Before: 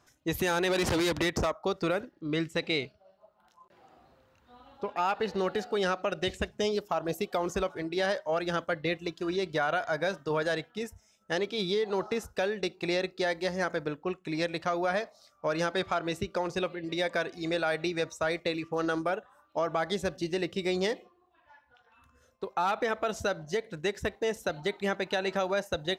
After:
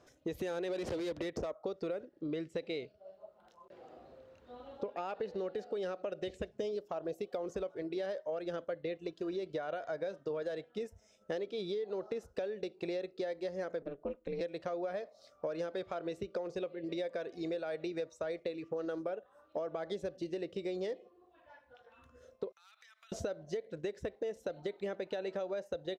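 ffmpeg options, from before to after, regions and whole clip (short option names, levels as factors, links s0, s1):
-filter_complex "[0:a]asettb=1/sr,asplit=3[s0][s1][s2];[s0]atrim=end=13.824[s3];[s1]atrim=start=13.82:end=14.41,asetpts=PTS-STARTPTS,afade=t=in:d=0.004:c=qsin,afade=t=out:st=0.586:d=0.004:c=qsin,lowpass=f=2700:p=1,aeval=exprs='val(0)*sin(2*PI*140*n/s)':c=same[s4];[s2]atrim=start=14.406[s5];[s3][s4]acrossfade=d=0.004:c1=hsin:c2=qsin[s6];[s6][s5]acrossfade=d=0.004:c1=qsin:c2=hsin,asettb=1/sr,asplit=3[s7][s8][s9];[s7]atrim=end=22.524[s10];[s8]atrim=start=22.52:end=23.12,asetpts=PTS-STARTPTS,afade=t=in:d=0.004:c=qsin,afade=t=out:st=0.596:d=0.004:c=qsin,highpass=f=1200:w=0.5412,highpass=f=1200:w=1.3066,aderivative,acompressor=threshold=0.00178:ratio=12:attack=3.2:release=140:knee=1:detection=peak[s11];[s9]atrim=start=23.116[s12];[s10][s11]acrossfade=d=0.004:c1=hsin:c2=qsin[s13];[s13][s12]acrossfade=d=0.004:c1=qsin:c2=hsin,firequalizer=gain_entry='entry(140,0);entry(520,11);entry(850,-2);entry(3700,-1);entry(12000,-9)':delay=0.05:min_phase=1,acompressor=threshold=0.0141:ratio=5"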